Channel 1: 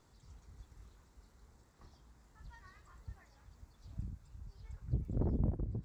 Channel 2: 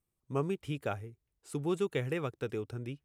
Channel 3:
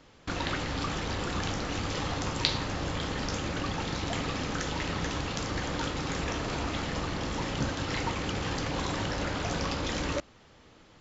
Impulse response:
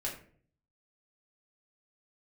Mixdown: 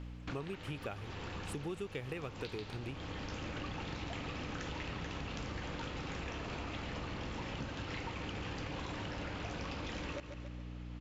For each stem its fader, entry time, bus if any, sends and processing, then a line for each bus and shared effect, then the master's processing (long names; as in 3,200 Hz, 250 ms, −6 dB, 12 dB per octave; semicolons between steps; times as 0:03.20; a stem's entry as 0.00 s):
−6.5 dB, 0.00 s, no send, no echo send, no processing
+2.5 dB, 0.00 s, no send, no echo send, noise gate −56 dBFS, range −8 dB
−1.5 dB, 0.00 s, no send, echo send −13 dB, high-shelf EQ 6,000 Hz −10.5 dB; mains hum 60 Hz, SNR 10 dB; automatic ducking −10 dB, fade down 0.65 s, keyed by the second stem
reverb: not used
echo: repeating echo 140 ms, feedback 38%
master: parametric band 2,600 Hz +5.5 dB 0.56 octaves; downward compressor 5 to 1, threshold −39 dBFS, peak gain reduction 14 dB